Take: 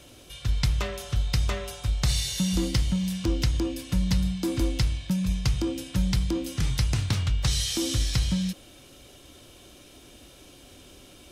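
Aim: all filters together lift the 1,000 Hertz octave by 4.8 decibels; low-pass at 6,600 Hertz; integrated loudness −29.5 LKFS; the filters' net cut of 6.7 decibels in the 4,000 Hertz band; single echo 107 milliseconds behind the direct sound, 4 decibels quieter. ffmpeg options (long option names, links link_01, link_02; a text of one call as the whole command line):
ffmpeg -i in.wav -af "lowpass=6600,equalizer=frequency=1000:width_type=o:gain=6.5,equalizer=frequency=4000:width_type=o:gain=-8.5,aecho=1:1:107:0.631,volume=-3.5dB" out.wav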